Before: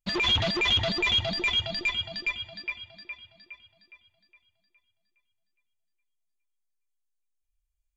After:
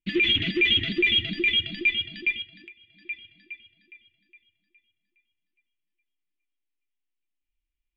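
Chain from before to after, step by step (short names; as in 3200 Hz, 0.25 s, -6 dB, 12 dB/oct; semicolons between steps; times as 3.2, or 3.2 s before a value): EQ curve 110 Hz 0 dB, 330 Hz +14 dB, 530 Hz -9 dB, 900 Hz -27 dB, 2000 Hz +9 dB, 3000 Hz +10 dB, 5000 Hz -12 dB; 2.42–3.06 compressor 5:1, threshold -42 dBFS, peak gain reduction 20 dB; flange 0.33 Hz, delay 6.1 ms, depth 3.5 ms, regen -68%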